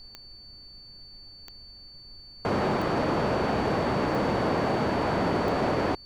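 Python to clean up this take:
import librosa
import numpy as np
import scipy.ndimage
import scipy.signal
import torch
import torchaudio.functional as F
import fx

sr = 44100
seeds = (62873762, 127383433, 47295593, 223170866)

y = fx.fix_declip(x, sr, threshold_db=-19.5)
y = fx.fix_declick_ar(y, sr, threshold=10.0)
y = fx.notch(y, sr, hz=4500.0, q=30.0)
y = fx.noise_reduce(y, sr, print_start_s=0.36, print_end_s=0.86, reduce_db=27.0)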